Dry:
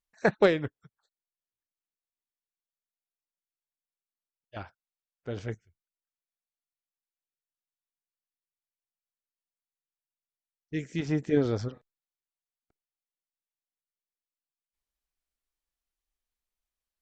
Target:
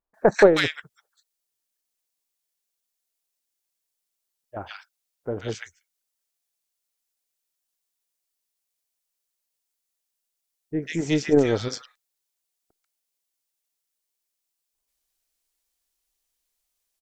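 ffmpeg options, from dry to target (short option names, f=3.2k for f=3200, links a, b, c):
-filter_complex "[0:a]bass=f=250:g=-8,treble=f=4k:g=7,aeval=exprs='0.355*(cos(1*acos(clip(val(0)/0.355,-1,1)))-cos(1*PI/2))+0.00794*(cos(8*acos(clip(val(0)/0.355,-1,1)))-cos(8*PI/2))':c=same,acrossover=split=1300[a][b];[b]adelay=140[c];[a][c]amix=inputs=2:normalize=0,volume=8.5dB"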